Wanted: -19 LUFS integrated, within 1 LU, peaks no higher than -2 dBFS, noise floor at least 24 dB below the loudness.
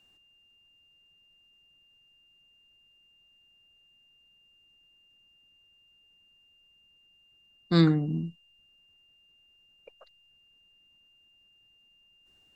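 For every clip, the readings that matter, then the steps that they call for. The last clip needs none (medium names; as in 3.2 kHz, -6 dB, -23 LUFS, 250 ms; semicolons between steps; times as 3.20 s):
steady tone 2.8 kHz; tone level -61 dBFS; loudness -26.0 LUFS; peak level -10.0 dBFS; loudness target -19.0 LUFS
-> band-stop 2.8 kHz, Q 30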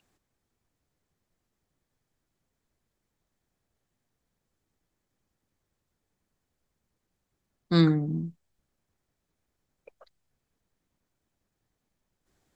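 steady tone not found; loudness -25.5 LUFS; peak level -10.0 dBFS; loudness target -19.0 LUFS
-> trim +6.5 dB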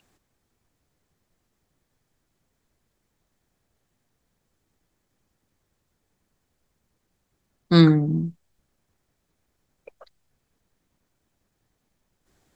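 loudness -19.0 LUFS; peak level -3.5 dBFS; noise floor -76 dBFS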